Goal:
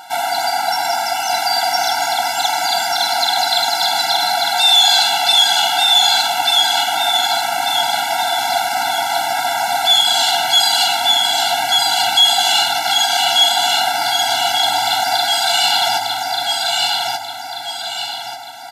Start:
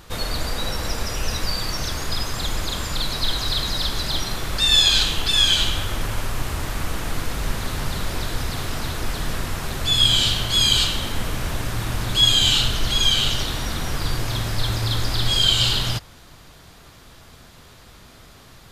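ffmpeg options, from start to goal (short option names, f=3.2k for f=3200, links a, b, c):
-af "aecho=1:1:1187|2374|3561|4748|5935:0.631|0.252|0.101|0.0404|0.0162,apsyclip=17dB,highpass=f=710:t=q:w=4.2,afftfilt=real='re*eq(mod(floor(b*sr/1024/330),2),0)':imag='im*eq(mod(floor(b*sr/1024/330),2),0)':win_size=1024:overlap=0.75,volume=-6dB"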